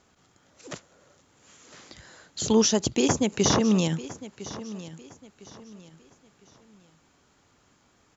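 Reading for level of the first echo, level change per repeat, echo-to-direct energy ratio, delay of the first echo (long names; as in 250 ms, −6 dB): −16.0 dB, −9.5 dB, −15.5 dB, 1,006 ms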